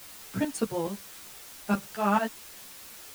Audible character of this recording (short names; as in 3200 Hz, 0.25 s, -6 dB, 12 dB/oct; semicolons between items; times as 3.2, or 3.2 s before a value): tremolo saw up 4.6 Hz, depth 80%; a quantiser's noise floor 8-bit, dither triangular; a shimmering, thickened sound